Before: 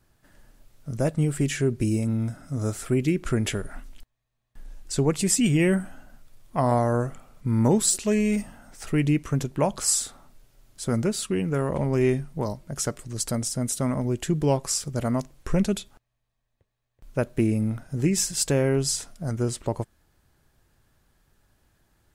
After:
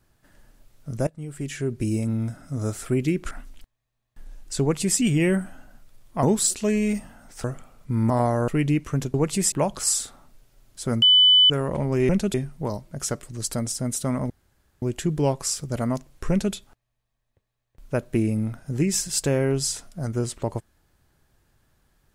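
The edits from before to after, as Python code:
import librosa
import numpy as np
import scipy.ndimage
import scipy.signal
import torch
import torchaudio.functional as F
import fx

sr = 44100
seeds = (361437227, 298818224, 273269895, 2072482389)

y = fx.edit(x, sr, fx.fade_in_from(start_s=1.07, length_s=0.92, floor_db=-21.0),
    fx.cut(start_s=3.31, length_s=0.39),
    fx.duplicate(start_s=5.0, length_s=0.38, to_s=9.53),
    fx.swap(start_s=6.62, length_s=0.38, other_s=7.66, other_length_s=1.21),
    fx.bleep(start_s=11.03, length_s=0.48, hz=3000.0, db=-11.5),
    fx.insert_room_tone(at_s=14.06, length_s=0.52),
    fx.duplicate(start_s=15.54, length_s=0.25, to_s=12.1), tone=tone)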